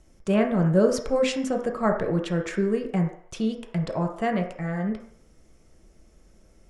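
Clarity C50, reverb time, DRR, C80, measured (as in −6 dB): 7.5 dB, 0.60 s, 2.0 dB, 11.0 dB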